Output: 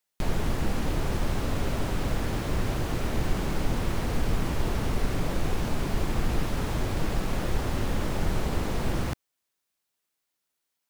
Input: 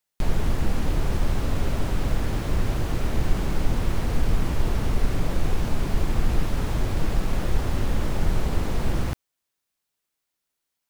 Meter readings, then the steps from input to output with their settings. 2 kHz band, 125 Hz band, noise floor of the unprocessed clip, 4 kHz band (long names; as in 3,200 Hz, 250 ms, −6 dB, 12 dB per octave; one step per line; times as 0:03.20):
0.0 dB, −3.5 dB, −82 dBFS, 0.0 dB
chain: low-shelf EQ 97 Hz −6.5 dB